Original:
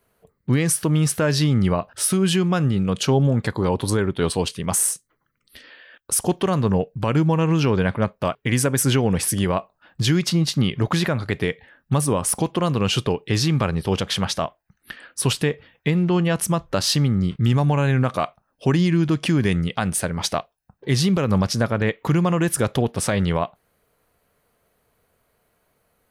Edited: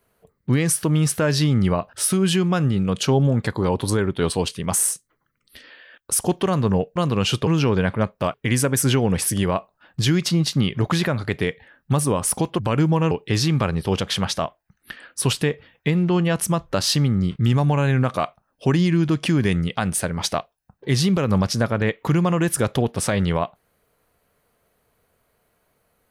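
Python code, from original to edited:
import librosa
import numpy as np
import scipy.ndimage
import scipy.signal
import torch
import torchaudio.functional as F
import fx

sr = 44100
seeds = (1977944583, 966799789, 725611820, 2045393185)

y = fx.edit(x, sr, fx.swap(start_s=6.96, length_s=0.52, other_s=12.6, other_length_s=0.51), tone=tone)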